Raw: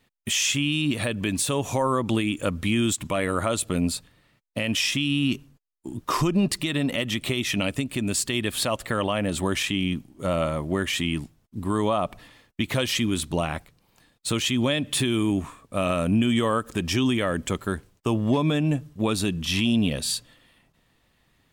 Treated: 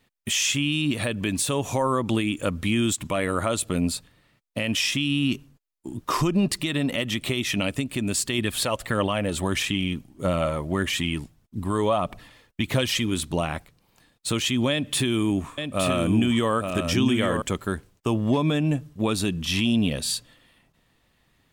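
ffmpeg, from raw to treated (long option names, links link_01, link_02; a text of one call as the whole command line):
ffmpeg -i in.wav -filter_complex "[0:a]asettb=1/sr,asplit=3[link_01][link_02][link_03];[link_01]atrim=end=8.384[link_04];[link_02]atrim=start=8.38:end=13.12,asetpts=PTS-STARTPTS,afade=type=in:duration=0.004:curve=qsin,afade=type=out:start_time=4.736:duration=0.004:curve=qsin,aphaser=in_gain=1:out_gain=1:delay=2.4:decay=0.3:speed=1.6:type=triangular[link_05];[link_03]atrim=start=13.116[link_06];[link_04][link_05]acrossfade=duration=0.004:curve1=hsin:curve2=qsin[link_07];[link_07][link_06]acrossfade=duration=0.004:curve1=qsin:curve2=hsin,asettb=1/sr,asplit=3[link_08][link_09][link_10];[link_08]atrim=end=14.714[link_11];[link_09]atrim=start=14.71:end=17.42,asetpts=PTS-STARTPTS,afade=type=in:duration=0.004:curve=qsin,afade=type=out:start_time=2.706:duration=0.004:curve=qsin,aecho=1:1:866:0.531,atrim=end_sample=119511[link_12];[link_10]atrim=start=17.416[link_13];[link_11][link_12]acrossfade=duration=0.004:curve1=hsin:curve2=qsin[link_14];[link_14][link_13]acrossfade=duration=0.004:curve1=qsin:curve2=hsin" out.wav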